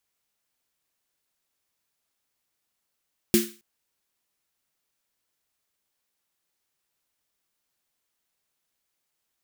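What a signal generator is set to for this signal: snare drum length 0.27 s, tones 220 Hz, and 350 Hz, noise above 1.5 kHz, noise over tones -5 dB, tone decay 0.29 s, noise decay 0.36 s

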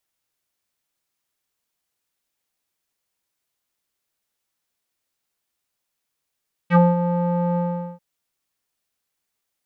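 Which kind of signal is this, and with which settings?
synth note square F3 12 dB/octave, low-pass 760 Hz, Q 3.1, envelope 2 oct, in 0.08 s, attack 55 ms, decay 0.20 s, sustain -9.5 dB, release 0.42 s, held 0.87 s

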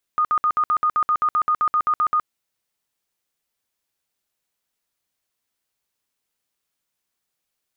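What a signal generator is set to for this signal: tone bursts 1.23 kHz, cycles 84, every 0.13 s, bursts 16, -15.5 dBFS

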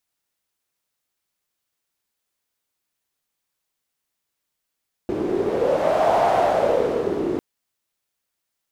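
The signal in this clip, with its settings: wind-like swept noise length 2.30 s, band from 350 Hz, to 710 Hz, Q 5.6, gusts 1, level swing 5.5 dB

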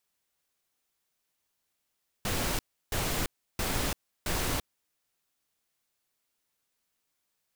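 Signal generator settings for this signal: noise bursts pink, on 0.34 s, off 0.33 s, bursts 4, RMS -30 dBFS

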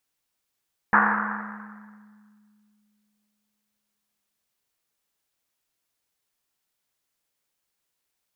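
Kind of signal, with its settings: Risset drum length 3.51 s, pitch 210 Hz, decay 2.98 s, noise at 1.3 kHz, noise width 920 Hz, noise 70%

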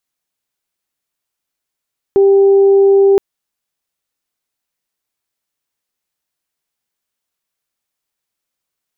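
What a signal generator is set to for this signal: steady additive tone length 1.02 s, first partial 394 Hz, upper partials -20 dB, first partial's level -5.5 dB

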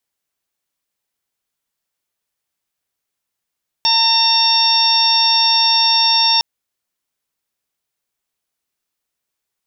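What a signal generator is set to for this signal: steady additive tone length 2.56 s, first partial 910 Hz, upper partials -16/-6.5/-0.5/-6.5/5 dB, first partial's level -18 dB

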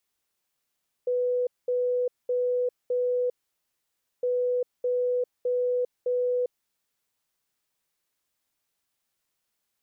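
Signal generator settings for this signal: beep pattern sine 495 Hz, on 0.40 s, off 0.21 s, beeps 4, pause 0.93 s, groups 2, -22.5 dBFS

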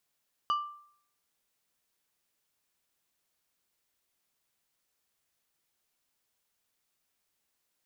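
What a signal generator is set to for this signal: glass hit plate, lowest mode 1.18 kHz, decay 0.60 s, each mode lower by 11 dB, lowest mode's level -23 dB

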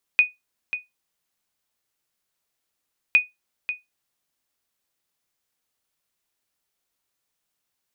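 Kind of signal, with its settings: sonar ping 2.48 kHz, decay 0.18 s, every 2.96 s, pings 2, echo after 0.54 s, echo -11.5 dB -7.5 dBFS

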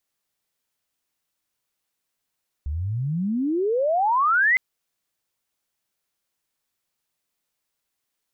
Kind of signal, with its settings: sweep logarithmic 68 Hz -> 2.1 kHz -24.5 dBFS -> -15 dBFS 1.91 s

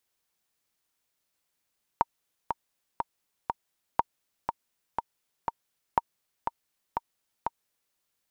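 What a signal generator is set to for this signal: metronome 121 bpm, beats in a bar 4, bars 3, 929 Hz, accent 6.5 dB -8 dBFS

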